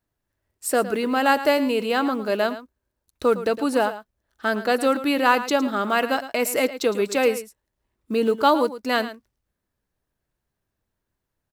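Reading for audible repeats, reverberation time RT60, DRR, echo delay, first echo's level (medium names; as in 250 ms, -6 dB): 1, no reverb, no reverb, 110 ms, -13.5 dB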